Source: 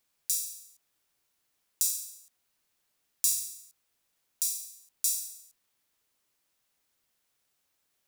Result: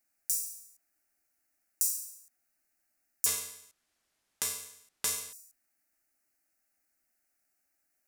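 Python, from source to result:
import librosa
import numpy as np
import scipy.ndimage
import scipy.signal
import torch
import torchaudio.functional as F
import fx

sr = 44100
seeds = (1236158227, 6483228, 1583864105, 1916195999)

y = fx.fixed_phaser(x, sr, hz=690.0, stages=8)
y = fx.resample_linear(y, sr, factor=2, at=(3.26, 5.33))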